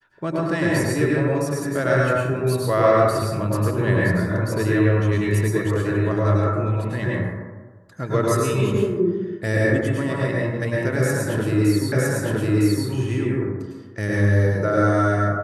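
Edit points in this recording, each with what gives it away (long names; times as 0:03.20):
0:11.92: the same again, the last 0.96 s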